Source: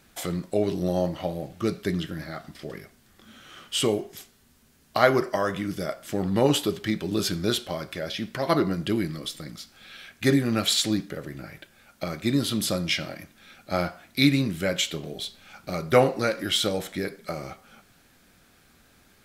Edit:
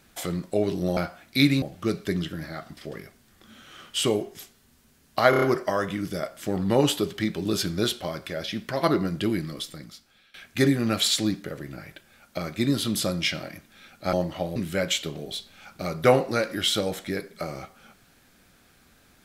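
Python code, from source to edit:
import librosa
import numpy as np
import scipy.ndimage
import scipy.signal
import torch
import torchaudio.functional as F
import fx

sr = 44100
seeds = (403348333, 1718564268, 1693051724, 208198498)

y = fx.edit(x, sr, fx.swap(start_s=0.97, length_s=0.43, other_s=13.79, other_length_s=0.65),
    fx.stutter(start_s=5.08, slice_s=0.03, count=5),
    fx.fade_out_to(start_s=9.23, length_s=0.77, floor_db=-21.5), tone=tone)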